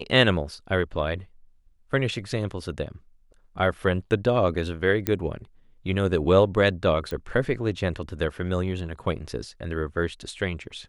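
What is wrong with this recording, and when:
0:05.07: click −9 dBFS
0:07.11: click −20 dBFS

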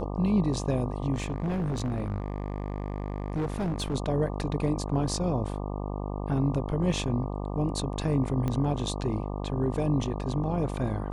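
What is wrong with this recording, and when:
mains buzz 50 Hz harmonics 24 −33 dBFS
0:01.13–0:03.95: clipping −25.5 dBFS
0:08.48: click −18 dBFS

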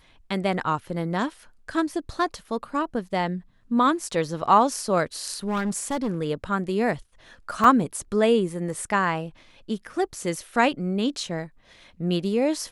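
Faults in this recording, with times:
0:05.48–0:06.21: clipping −22 dBFS
0:07.64: drop-out 3.9 ms

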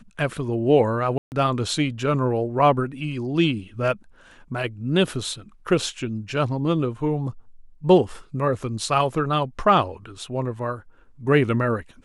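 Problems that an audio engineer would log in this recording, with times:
0:01.18–0:01.32: drop-out 139 ms

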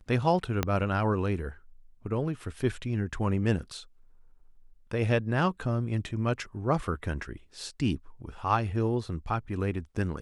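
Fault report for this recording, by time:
0:00.63: click −11 dBFS

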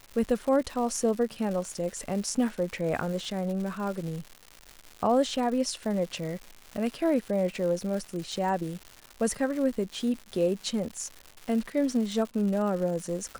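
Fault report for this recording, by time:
surface crackle 280 per second −35 dBFS

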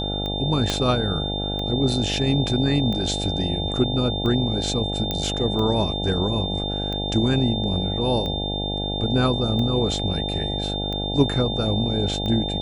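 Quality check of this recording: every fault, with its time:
mains buzz 50 Hz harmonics 17 −28 dBFS
scratch tick 45 rpm −18 dBFS
whistle 3,600 Hz −28 dBFS
0:00.70: click −8 dBFS
0:05.11: click −10 dBFS

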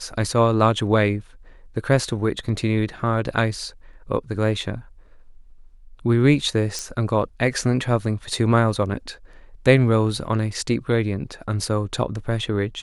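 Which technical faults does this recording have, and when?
0:06.79: click −14 dBFS

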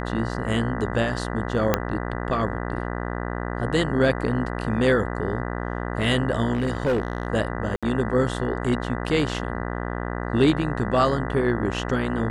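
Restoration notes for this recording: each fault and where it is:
mains buzz 60 Hz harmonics 33 −29 dBFS
0:01.74: click −4 dBFS
0:06.53–0:07.27: clipping −18 dBFS
0:07.76–0:07.83: drop-out 66 ms

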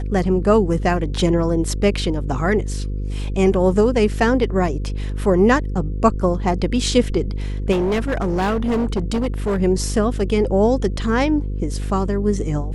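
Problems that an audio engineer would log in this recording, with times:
mains buzz 50 Hz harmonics 10 −24 dBFS
0:07.71–0:09.62: clipping −16 dBFS

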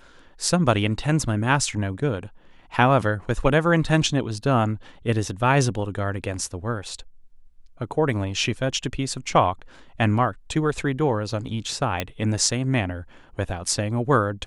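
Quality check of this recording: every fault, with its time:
0:12.00: click −9 dBFS

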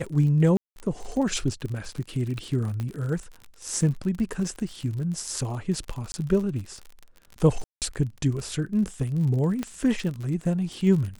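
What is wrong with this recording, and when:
surface crackle 50 per second −32 dBFS
0:00.57–0:00.76: drop-out 191 ms
0:02.80: click −20 dBFS
0:06.12–0:06.14: drop-out 20 ms
0:07.64–0:07.82: drop-out 178 ms
0:09.63: click −16 dBFS

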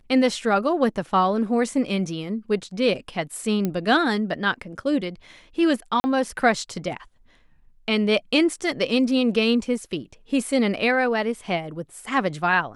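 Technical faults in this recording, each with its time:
0:03.65: click −12 dBFS
0:06.00–0:06.04: drop-out 40 ms

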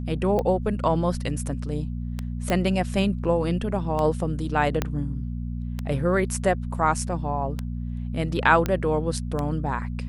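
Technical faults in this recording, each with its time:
mains hum 60 Hz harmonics 4 −30 dBFS
scratch tick 33 1/3 rpm −15 dBFS
0:02.50: click −11 dBFS
0:04.82: click −9 dBFS
0:08.66: click −11 dBFS

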